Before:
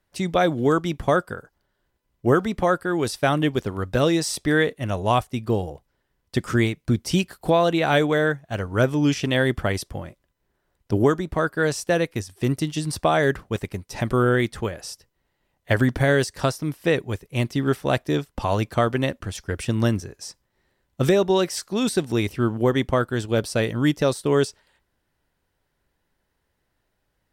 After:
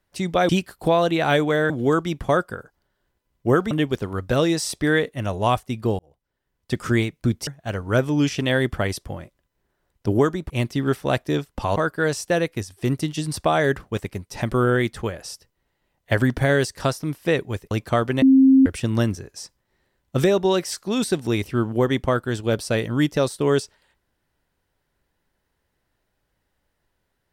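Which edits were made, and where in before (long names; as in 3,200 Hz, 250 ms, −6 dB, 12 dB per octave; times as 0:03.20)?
0:02.50–0:03.35: remove
0:05.63–0:06.48: fade in
0:07.11–0:08.32: move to 0:00.49
0:17.30–0:18.56: move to 0:11.35
0:19.07–0:19.51: beep over 266 Hz −9.5 dBFS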